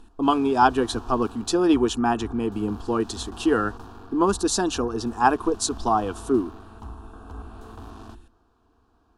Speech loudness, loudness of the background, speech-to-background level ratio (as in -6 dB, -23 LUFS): -23.5 LUFS, -42.5 LUFS, 19.0 dB